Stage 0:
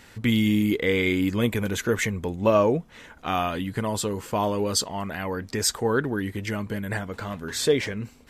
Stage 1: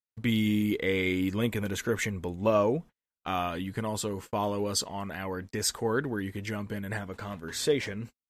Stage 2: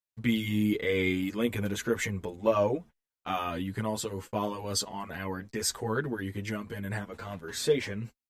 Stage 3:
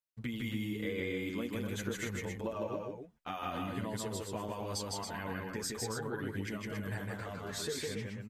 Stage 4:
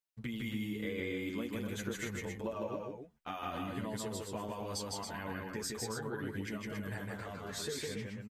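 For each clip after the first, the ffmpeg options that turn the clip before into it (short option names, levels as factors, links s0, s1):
-af "agate=range=0.00316:threshold=0.0158:ratio=16:detection=peak,volume=0.562"
-filter_complex "[0:a]asplit=2[s0][s1];[s1]adelay=8,afreqshift=1.9[s2];[s0][s2]amix=inputs=2:normalize=1,volume=1.26"
-af "acompressor=threshold=0.0282:ratio=10,aecho=1:1:157.4|277:0.794|0.501,volume=0.596"
-filter_complex "[0:a]asplit=2[s0][s1];[s1]adelay=14,volume=0.224[s2];[s0][s2]amix=inputs=2:normalize=0,volume=0.841"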